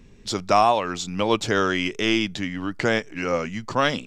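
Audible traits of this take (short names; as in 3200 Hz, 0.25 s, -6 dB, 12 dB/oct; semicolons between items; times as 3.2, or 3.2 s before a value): noise floor -47 dBFS; spectral tilt -4.5 dB/oct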